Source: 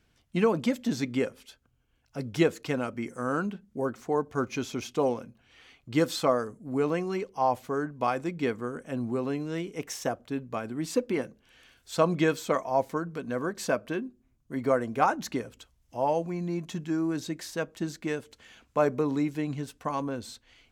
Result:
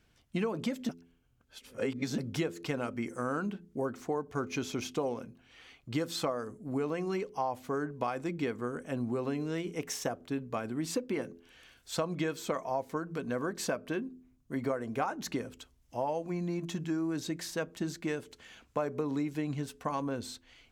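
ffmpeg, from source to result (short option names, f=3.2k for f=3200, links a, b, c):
-filter_complex "[0:a]asplit=3[a][b][c];[a]atrim=end=0.892[d];[b]atrim=start=0.888:end=2.182,asetpts=PTS-STARTPTS,areverse[e];[c]atrim=start=2.178[f];[d][e]acrossfade=d=0.004:c1=hsin:c2=hsin[g];[g][f]acrossfade=d=0.004:c1=hsin:c2=hsin,bandreject=f=84.87:t=h:w=4,bandreject=f=169.74:t=h:w=4,bandreject=f=254.61:t=h:w=4,bandreject=f=339.48:t=h:w=4,bandreject=f=424.35:t=h:w=4,acompressor=threshold=-29dB:ratio=6"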